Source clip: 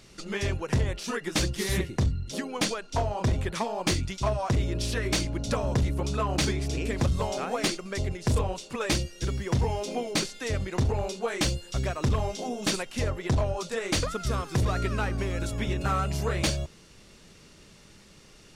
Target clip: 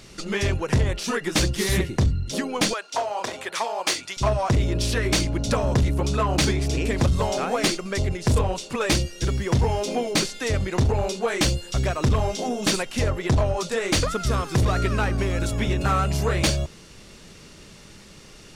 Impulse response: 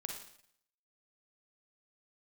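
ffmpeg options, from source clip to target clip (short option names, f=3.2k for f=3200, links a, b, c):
-filter_complex "[0:a]asettb=1/sr,asplit=3[a][b][c];[a]atrim=end=2.734[d];[b]atrim=start=2.73:end=4.17,asetpts=PTS-STARTPTS,afade=t=in:d=0.004:c=qsin,afade=t=out:st=1.436:d=0.004:c=qsin,highpass=610[e];[c]atrim=start=4.166[f];[d][e]acrossfade=d=0.004:c1=hsin:c2=qsin[g];[g][f]acrossfade=d=0.004:c1=qsin:c2=hsin,asplit=2[h][i];[i]asoftclip=type=tanh:threshold=-29dB,volume=-4.5dB[j];[h][j]amix=inputs=2:normalize=0,volume=3dB"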